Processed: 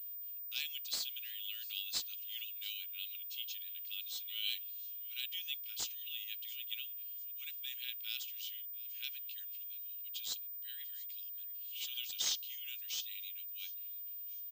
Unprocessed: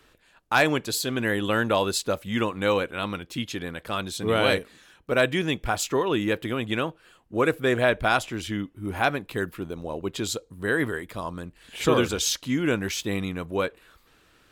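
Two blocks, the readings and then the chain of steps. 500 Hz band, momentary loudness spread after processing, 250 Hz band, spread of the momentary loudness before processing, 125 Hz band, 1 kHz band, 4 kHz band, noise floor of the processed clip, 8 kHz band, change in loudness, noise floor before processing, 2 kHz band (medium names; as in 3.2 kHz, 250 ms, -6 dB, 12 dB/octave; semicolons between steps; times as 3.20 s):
under -40 dB, 5 LU, under -40 dB, 10 LU, under -40 dB, under -35 dB, -7.5 dB, -46 dBFS, -11.5 dB, -13.5 dB, -60 dBFS, -22.5 dB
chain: elliptic high-pass 2.9 kHz, stop band 80 dB; feedback delay 694 ms, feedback 34%, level -21 dB; class-D stage that switches slowly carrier 15 kHz; trim -6.5 dB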